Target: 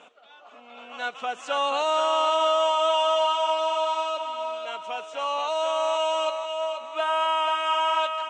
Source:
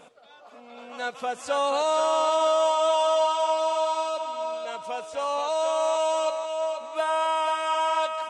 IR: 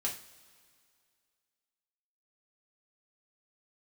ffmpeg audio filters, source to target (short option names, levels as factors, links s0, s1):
-af "aeval=exprs='0.188*(cos(1*acos(clip(val(0)/0.188,-1,1)))-cos(1*PI/2))+0.0015*(cos(8*acos(clip(val(0)/0.188,-1,1)))-cos(8*PI/2))':c=same,highpass=280,equalizer=f=510:t=q:w=4:g=-5,equalizer=f=1300:t=q:w=4:g=3,equalizer=f=2900:t=q:w=4:g=8,equalizer=f=4800:t=q:w=4:g=-9,lowpass=f=7000:w=0.5412,lowpass=f=7000:w=1.3066"